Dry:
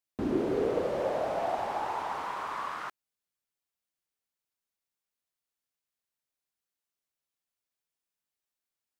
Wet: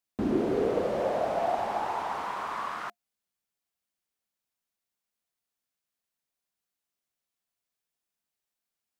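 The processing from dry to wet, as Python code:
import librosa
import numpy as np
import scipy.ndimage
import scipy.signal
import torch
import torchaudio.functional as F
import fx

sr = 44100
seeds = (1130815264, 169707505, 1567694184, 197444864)

y = fx.small_body(x, sr, hz=(210.0, 700.0), ring_ms=95, db=6)
y = y * librosa.db_to_amplitude(1.5)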